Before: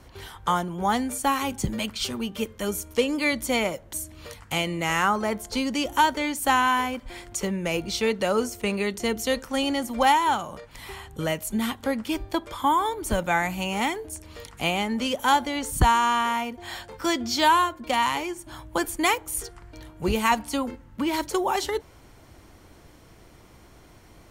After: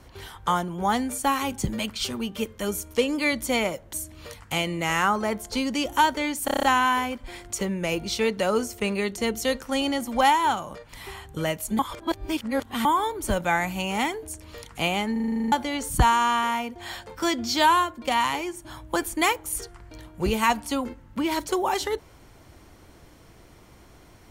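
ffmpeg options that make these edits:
-filter_complex "[0:a]asplit=19[a][b][c][d][e][f][g][h][i][j][k][l][m][n][o][p][q][r][s];[a]atrim=end=6.482[t];[b]atrim=start=6.448:end=6.482[u];[c]atrim=start=6.448:end=6.482[v];[d]atrim=start=6.448:end=6.482[w];[e]atrim=start=6.448:end=6.482[x];[f]atrim=start=6.448:end=6.482[y];[g]atrim=start=6.448:end=11.612[z];[h]atrim=start=11.608:end=12.672,asetpts=PTS-STARTPTS,areverse[aa];[i]atrim=start=12.668:end=14.982[ab];[j]atrim=start=14.938:end=14.982[ac];[k]atrim=start=14.938:end=14.982[ad];[l]atrim=start=14.938:end=14.982[ae];[m]atrim=start=14.938:end=14.982[af];[n]atrim=start=14.938:end=14.982[ag];[o]atrim=start=14.938:end=14.982[ah];[p]atrim=start=14.938:end=14.982[ai];[q]atrim=start=14.938:end=14.982[aj];[r]atrim=start=14.938:end=14.982[ak];[s]atrim=start=15.338[al];[t][u]acrossfade=d=0.004:c1=hsin:c2=hsin[am];[am][v]acrossfade=d=0.004:c1=hsin:c2=hsin[an];[an][w]acrossfade=d=0.004:c1=hsin:c2=hsin[ao];[ao][x]acrossfade=d=0.004:c1=hsin:c2=hsin[ap];[ap][y]acrossfade=d=0.004:c1=hsin:c2=hsin[aq];[aq][z]acrossfade=d=0.004:c1=hsin:c2=hsin[ar];[ar][aa]acrossfade=d=0.004:c1=hsin:c2=hsin[as];[as][ab]acrossfade=d=0.004:c1=hsin:c2=hsin[at];[at][ac]acrossfade=d=0.004:c1=hsin:c2=hsin[au];[au][ad]acrossfade=d=0.004:c1=hsin:c2=hsin[av];[av][ae]acrossfade=d=0.004:c1=hsin:c2=hsin[aw];[aw][af]acrossfade=d=0.004:c1=hsin:c2=hsin[ax];[ax][ag]acrossfade=d=0.004:c1=hsin:c2=hsin[ay];[ay][ah]acrossfade=d=0.004:c1=hsin:c2=hsin[az];[az][ai]acrossfade=d=0.004:c1=hsin:c2=hsin[ba];[ba][aj]acrossfade=d=0.004:c1=hsin:c2=hsin[bb];[bb][ak]acrossfade=d=0.004:c1=hsin:c2=hsin[bc];[bc][al]acrossfade=d=0.004:c1=hsin:c2=hsin"

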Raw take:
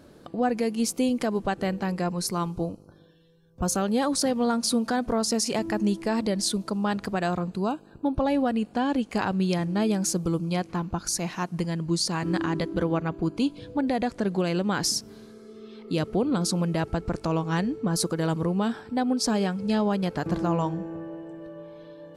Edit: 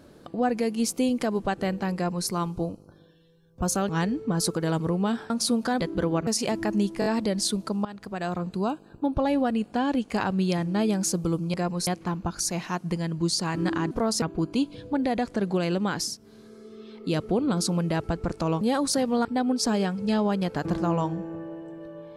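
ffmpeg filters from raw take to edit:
-filter_complex "[0:a]asplit=17[a][b][c][d][e][f][g][h][i][j][k][l][m][n][o][p][q];[a]atrim=end=3.892[r];[b]atrim=start=17.448:end=18.862[s];[c]atrim=start=4.528:end=5.032[t];[d]atrim=start=12.588:end=13.062[u];[e]atrim=start=5.338:end=6.092[v];[f]atrim=start=6.068:end=6.092[w];[g]atrim=start=6.068:end=6.092[x];[h]atrim=start=6.068:end=6.86,asetpts=PTS-STARTPTS,afade=t=out:st=0.788:d=0.004:c=hsin:silence=0.141254[y];[i]atrim=start=6.86:end=10.552,asetpts=PTS-STARTPTS,afade=t=in:d=0.67:silence=0.141254[z];[j]atrim=start=1.948:end=2.282[aa];[k]atrim=start=10.548:end=12.592[ab];[l]atrim=start=5.028:end=5.342[ac];[m]atrim=start=13.058:end=15.02,asetpts=PTS-STARTPTS,afade=t=out:st=1.602:d=0.36:silence=0.334965[ad];[n]atrim=start=15.02:end=15.04,asetpts=PTS-STARTPTS,volume=-9.5dB[ae];[o]atrim=start=15.04:end=17.452,asetpts=PTS-STARTPTS,afade=t=in:d=0.36:silence=0.334965[af];[p]atrim=start=3.888:end=4.532[ag];[q]atrim=start=18.858[ah];[r][s]acrossfade=d=0.004:c1=hsin:c2=hsin[ai];[ai][t]acrossfade=d=0.004:c1=hsin:c2=hsin[aj];[aj][u]acrossfade=d=0.004:c1=hsin:c2=hsin[ak];[ak][v]acrossfade=d=0.004:c1=hsin:c2=hsin[al];[al][w]acrossfade=d=0.004:c1=hsin:c2=hsin[am];[am][x]acrossfade=d=0.004:c1=hsin:c2=hsin[an];[y][z]concat=n=2:v=0:a=1[ao];[an][ao]acrossfade=d=0.004:c1=hsin:c2=hsin[ap];[ap][aa]acrossfade=d=0.004:c1=hsin:c2=hsin[aq];[aq][ab]acrossfade=d=0.004:c1=hsin:c2=hsin[ar];[ar][ac]acrossfade=d=0.004:c1=hsin:c2=hsin[as];[ad][ae][af]concat=n=3:v=0:a=1[at];[as][at]acrossfade=d=0.004:c1=hsin:c2=hsin[au];[au][ag]acrossfade=d=0.004:c1=hsin:c2=hsin[av];[av][ah]acrossfade=d=0.004:c1=hsin:c2=hsin"

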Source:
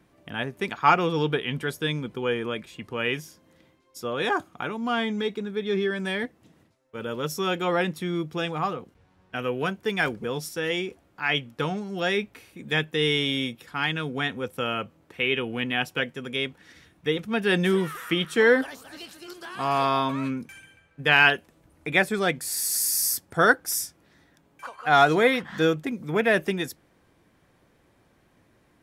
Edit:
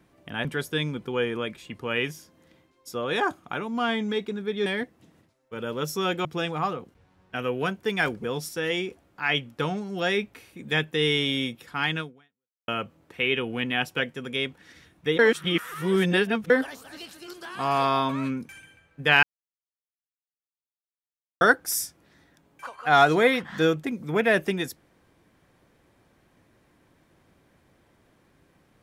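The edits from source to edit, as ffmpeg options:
-filter_complex "[0:a]asplit=9[a][b][c][d][e][f][g][h][i];[a]atrim=end=0.452[j];[b]atrim=start=1.538:end=5.752[k];[c]atrim=start=6.078:end=7.672[l];[d]atrim=start=8.248:end=14.68,asetpts=PTS-STARTPTS,afade=t=out:st=5.752:d=0.68:c=exp[m];[e]atrim=start=14.68:end=17.192,asetpts=PTS-STARTPTS,afade=t=in:d=0.004:c=hsin[n];[f]atrim=start=17.188:end=18.502,asetpts=PTS-STARTPTS,areverse[o];[g]atrim=start=18.498:end=21.23,asetpts=PTS-STARTPTS,afade=t=out:st=2.728:d=0.004:c=hsin[p];[h]atrim=start=21.23:end=23.41,asetpts=PTS-STARTPTS,volume=0[q];[i]atrim=start=23.41,asetpts=PTS-STARTPTS,afade=t=in:d=0.004:c=hsin[r];[j][k]acrossfade=d=0.004:c1=hsin:c2=hsin[s];[s][l]acrossfade=d=0.004:c1=hsin:c2=hsin[t];[m][n]concat=n=2:v=0:a=1[u];[t][u]acrossfade=d=0.004:c1=hsin:c2=hsin[v];[v][o]acrossfade=d=0.004:c1=hsin:c2=hsin[w];[p][q][r]concat=n=3:v=0:a=1[x];[w][x]acrossfade=d=0.004:c1=hsin:c2=hsin"

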